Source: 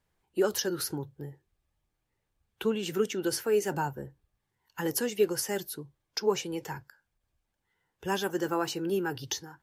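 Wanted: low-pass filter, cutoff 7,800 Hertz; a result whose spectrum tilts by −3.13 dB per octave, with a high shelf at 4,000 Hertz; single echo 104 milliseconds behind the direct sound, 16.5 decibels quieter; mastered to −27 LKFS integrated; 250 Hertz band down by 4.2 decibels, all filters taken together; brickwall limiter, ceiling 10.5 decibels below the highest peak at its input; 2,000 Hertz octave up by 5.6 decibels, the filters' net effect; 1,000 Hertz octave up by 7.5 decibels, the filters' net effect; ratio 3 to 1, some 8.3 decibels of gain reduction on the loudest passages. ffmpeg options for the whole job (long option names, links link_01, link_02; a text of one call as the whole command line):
ffmpeg -i in.wav -af "lowpass=7800,equalizer=frequency=250:width_type=o:gain=-8,equalizer=frequency=1000:width_type=o:gain=8.5,equalizer=frequency=2000:width_type=o:gain=3.5,highshelf=frequency=4000:gain=3,acompressor=threshold=-31dB:ratio=3,alimiter=level_in=1.5dB:limit=-24dB:level=0:latency=1,volume=-1.5dB,aecho=1:1:104:0.15,volume=10.5dB" out.wav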